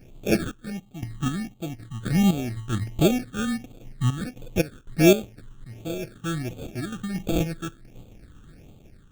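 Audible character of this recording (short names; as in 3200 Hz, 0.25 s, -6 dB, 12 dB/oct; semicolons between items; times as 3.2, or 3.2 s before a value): aliases and images of a low sample rate 1000 Hz, jitter 0%; phasing stages 8, 1.4 Hz, lowest notch 640–1700 Hz; random-step tremolo 3.9 Hz, depth 85%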